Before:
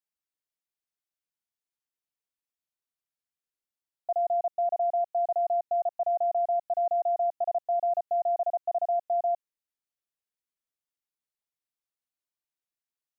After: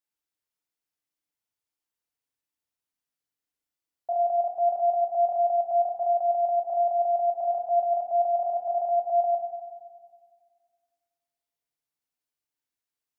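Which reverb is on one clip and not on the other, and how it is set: FDN reverb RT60 1.8 s, low-frequency decay 1.3×, high-frequency decay 0.75×, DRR 1 dB

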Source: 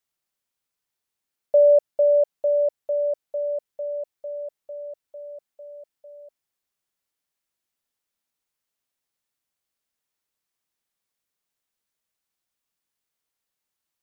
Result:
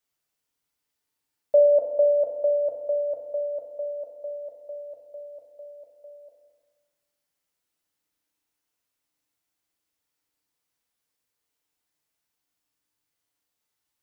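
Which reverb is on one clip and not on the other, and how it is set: FDN reverb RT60 1.4 s, low-frequency decay 1.3×, high-frequency decay 0.75×, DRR -0.5 dB; gain -1 dB

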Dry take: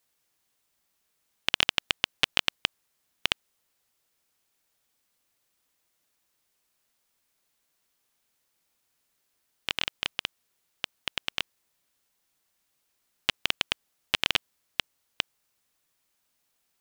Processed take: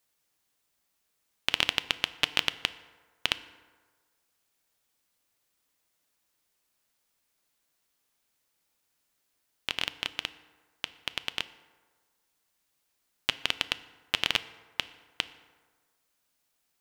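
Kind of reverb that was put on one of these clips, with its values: FDN reverb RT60 1.5 s, low-frequency decay 0.8×, high-frequency decay 0.5×, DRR 13 dB; gain -1.5 dB

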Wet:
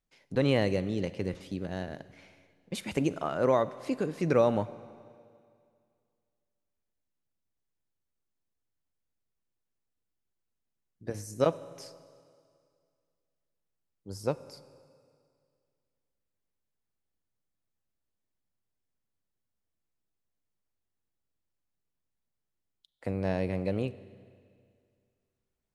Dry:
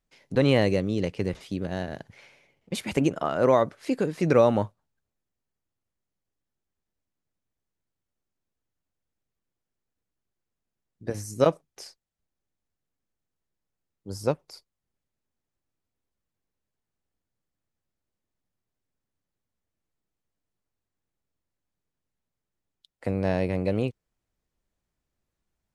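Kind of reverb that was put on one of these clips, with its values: Schroeder reverb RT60 2.2 s, combs from 32 ms, DRR 16 dB; gain -5 dB

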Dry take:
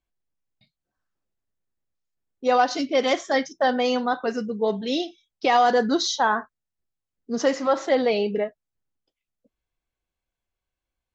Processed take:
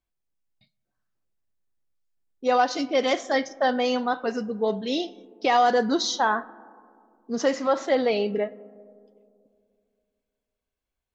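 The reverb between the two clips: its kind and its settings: digital reverb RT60 2.4 s, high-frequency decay 0.25×, pre-delay 0 ms, DRR 20 dB; gain -1.5 dB

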